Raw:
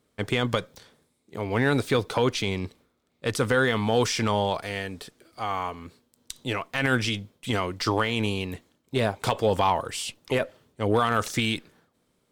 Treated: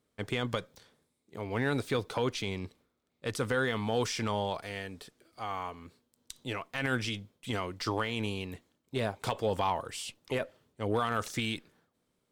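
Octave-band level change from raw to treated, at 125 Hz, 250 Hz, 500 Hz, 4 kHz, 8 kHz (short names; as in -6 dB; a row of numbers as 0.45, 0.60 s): -7.5, -7.5, -7.5, -7.5, -7.5 dB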